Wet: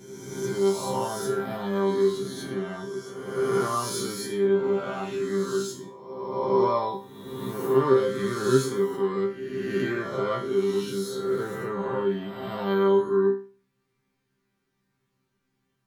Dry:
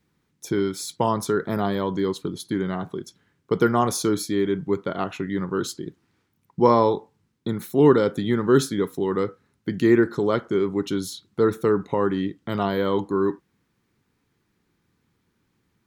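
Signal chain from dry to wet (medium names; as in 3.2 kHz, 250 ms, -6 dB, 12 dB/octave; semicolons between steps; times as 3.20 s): reverse spectral sustain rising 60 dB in 1.62 s; chord resonator C3 fifth, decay 0.39 s; trim +6.5 dB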